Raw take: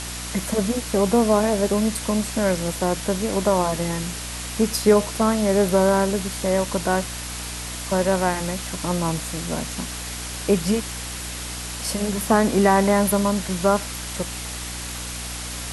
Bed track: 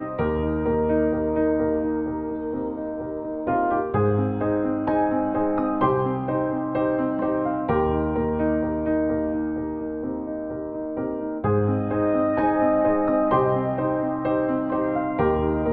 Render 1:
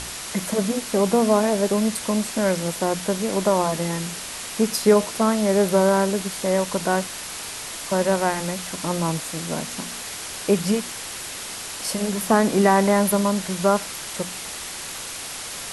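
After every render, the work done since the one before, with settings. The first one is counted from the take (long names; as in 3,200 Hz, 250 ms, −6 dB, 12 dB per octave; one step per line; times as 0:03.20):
hum removal 60 Hz, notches 5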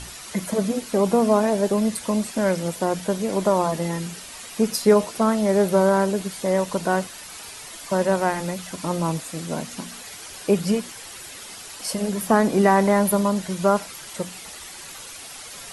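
broadband denoise 9 dB, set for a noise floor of −34 dBFS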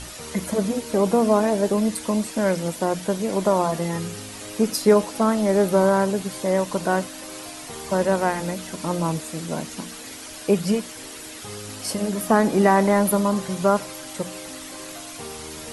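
mix in bed track −17 dB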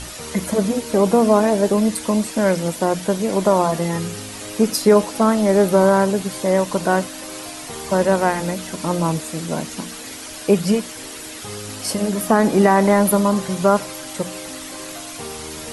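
level +4 dB
brickwall limiter −3 dBFS, peak gain reduction 3 dB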